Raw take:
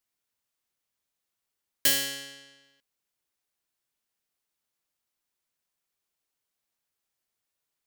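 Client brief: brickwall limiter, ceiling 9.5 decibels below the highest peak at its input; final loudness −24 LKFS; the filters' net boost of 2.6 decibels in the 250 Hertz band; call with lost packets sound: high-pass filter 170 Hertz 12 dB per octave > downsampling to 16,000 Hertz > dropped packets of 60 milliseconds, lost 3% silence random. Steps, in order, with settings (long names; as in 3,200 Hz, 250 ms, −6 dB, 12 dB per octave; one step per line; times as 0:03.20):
parametric band 250 Hz +3.5 dB
brickwall limiter −20 dBFS
high-pass filter 170 Hz 12 dB per octave
downsampling to 16,000 Hz
dropped packets of 60 ms, lost 3% silence random
level +10 dB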